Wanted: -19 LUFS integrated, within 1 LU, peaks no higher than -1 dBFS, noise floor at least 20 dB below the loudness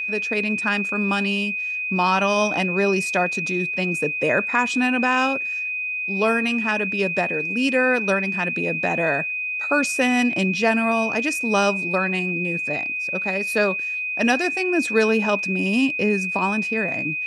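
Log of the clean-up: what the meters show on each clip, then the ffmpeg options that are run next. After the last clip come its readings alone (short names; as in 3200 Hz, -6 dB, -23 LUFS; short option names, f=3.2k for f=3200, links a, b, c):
steady tone 2500 Hz; tone level -24 dBFS; loudness -21.0 LUFS; peak -5.5 dBFS; loudness target -19.0 LUFS
-> -af "bandreject=f=2.5k:w=30"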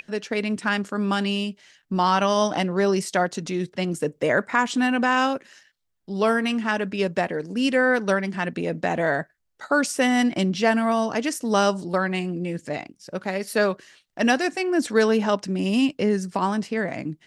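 steady tone none; loudness -23.5 LUFS; peak -6.5 dBFS; loudness target -19.0 LUFS
-> -af "volume=4.5dB"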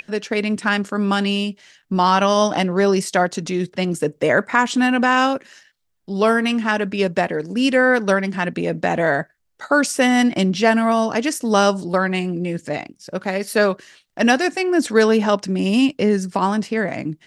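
loudness -19.0 LUFS; peak -2.0 dBFS; noise floor -63 dBFS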